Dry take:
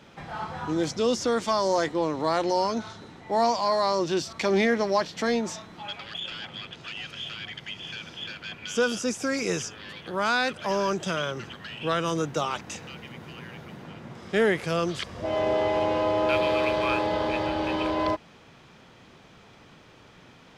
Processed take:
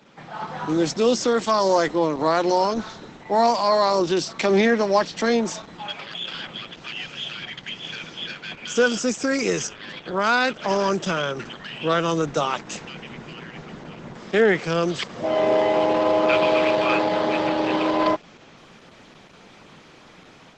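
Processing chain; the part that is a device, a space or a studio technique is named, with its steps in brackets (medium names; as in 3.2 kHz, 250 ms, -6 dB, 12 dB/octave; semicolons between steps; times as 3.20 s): video call (high-pass 140 Hz 24 dB/octave; level rider gain up to 6 dB; Opus 12 kbps 48 kHz)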